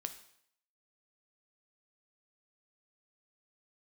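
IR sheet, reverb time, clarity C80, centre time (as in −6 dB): 0.70 s, 14.5 dB, 9 ms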